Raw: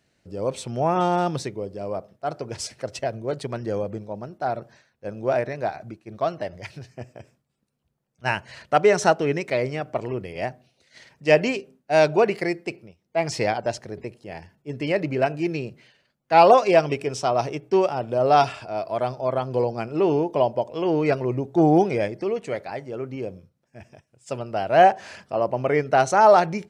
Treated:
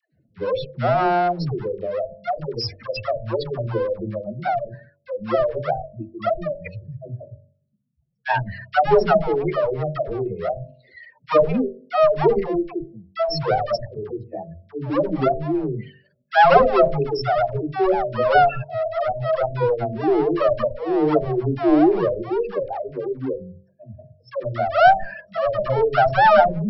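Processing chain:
expanding power law on the bin magnitudes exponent 3.6
asymmetric clip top −28.5 dBFS, bottom −8.5 dBFS
linear-phase brick-wall low-pass 5,600 Hz
hum removal 47.69 Hz, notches 14
all-pass dispersion lows, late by 133 ms, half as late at 480 Hz
level +6.5 dB

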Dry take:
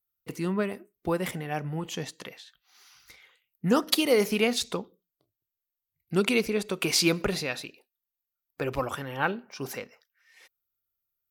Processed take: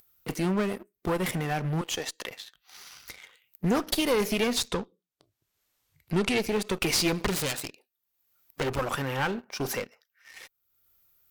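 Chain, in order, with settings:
0:07.17–0:08.79: phase distortion by the signal itself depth 0.66 ms
downward compressor 2 to 1, threshold −31 dBFS, peak gain reduction 8 dB
0:01.81–0:02.31: high-pass filter 450 Hz 12 dB per octave
upward compression, threshold −42 dBFS
leveller curve on the samples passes 2
asymmetric clip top −28.5 dBFS
0:04.67–0:06.38: low-pass filter 10,000 Hz 12 dB per octave

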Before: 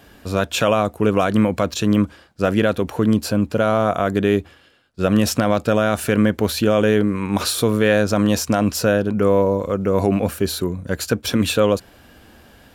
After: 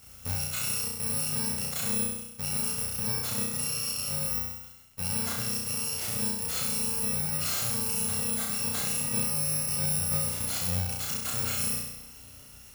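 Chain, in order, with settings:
samples in bit-reversed order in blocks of 128 samples
downward compressor, threshold −19 dBFS, peak gain reduction 8.5 dB
brickwall limiter −18 dBFS, peak gain reduction 10 dB
flutter between parallel walls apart 5.7 metres, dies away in 0.92 s
surface crackle 210 per second −43 dBFS
level −5.5 dB

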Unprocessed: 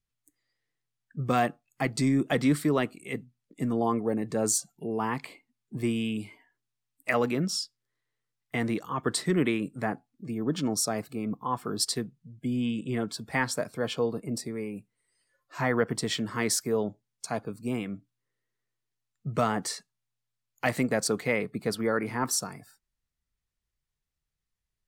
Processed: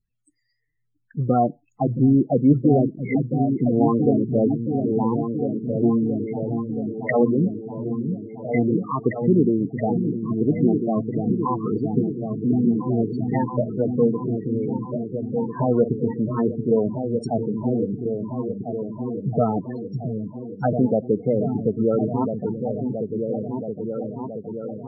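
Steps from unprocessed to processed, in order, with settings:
treble cut that deepens with the level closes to 860 Hz, closed at −26 dBFS
echo whose low-pass opens from repeat to repeat 674 ms, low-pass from 200 Hz, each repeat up 2 octaves, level −3 dB
spectral peaks only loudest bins 16
level +8 dB

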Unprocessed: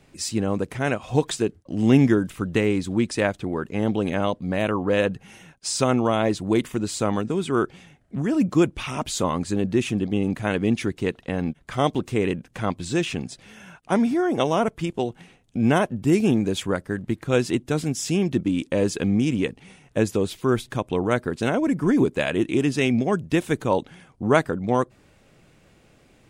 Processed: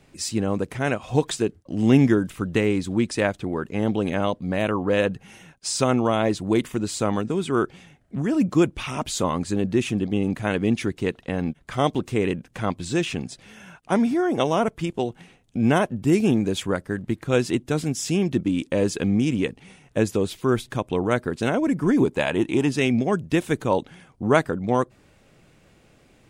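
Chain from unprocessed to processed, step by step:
0:22.02–0:22.68: parametric band 880 Hz +6 dB → +13 dB 0.35 octaves

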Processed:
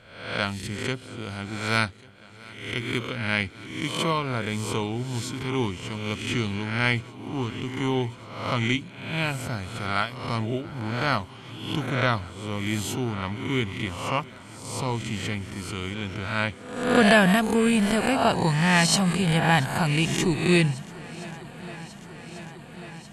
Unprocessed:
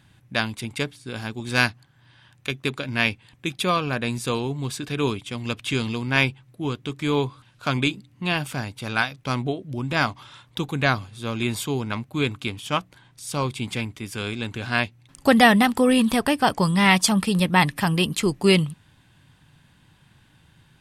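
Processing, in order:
peak hold with a rise ahead of every peak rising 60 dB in 0.69 s
low-shelf EQ 230 Hz +4 dB
on a send: feedback echo with a long and a short gap by turns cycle 1,028 ms, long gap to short 1.5 to 1, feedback 76%, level −22.5 dB
on the sum: speed change −10%
level −5 dB

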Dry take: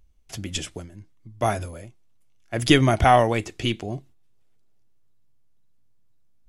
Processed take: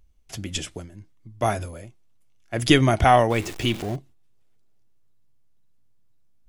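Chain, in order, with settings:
0:03.30–0:03.96: converter with a step at zero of −32 dBFS

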